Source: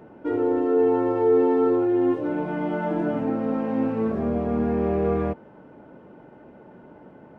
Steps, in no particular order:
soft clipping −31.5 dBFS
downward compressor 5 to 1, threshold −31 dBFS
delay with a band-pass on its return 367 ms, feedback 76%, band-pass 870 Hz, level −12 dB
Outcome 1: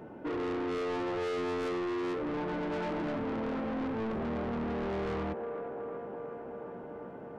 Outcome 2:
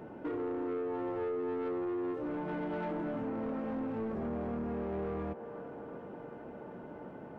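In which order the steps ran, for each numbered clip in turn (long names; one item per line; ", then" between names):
delay with a band-pass on its return, then soft clipping, then downward compressor
downward compressor, then delay with a band-pass on its return, then soft clipping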